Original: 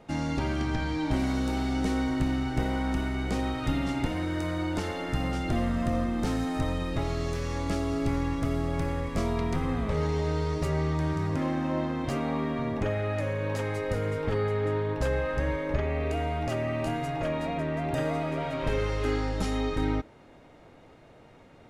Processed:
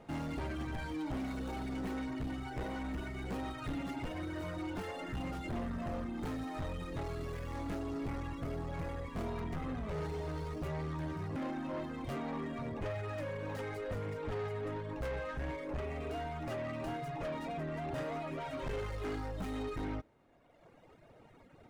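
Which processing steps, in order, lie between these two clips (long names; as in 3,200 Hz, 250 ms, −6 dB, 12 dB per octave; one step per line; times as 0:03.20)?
running median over 9 samples
reverb reduction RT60 1.5 s
soft clipping −31.5 dBFS, distortion −9 dB
level −2.5 dB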